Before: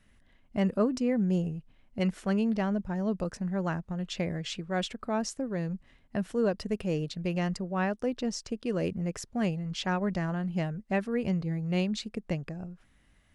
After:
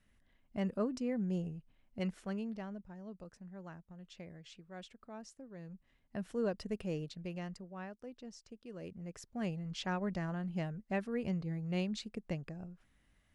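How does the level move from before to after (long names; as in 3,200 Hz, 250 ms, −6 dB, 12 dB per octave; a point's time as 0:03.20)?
0:02.04 −8.5 dB
0:02.99 −18.5 dB
0:05.48 −18.5 dB
0:06.34 −7.5 dB
0:06.86 −7.5 dB
0:07.97 −18 dB
0:08.70 −18 dB
0:09.58 −7 dB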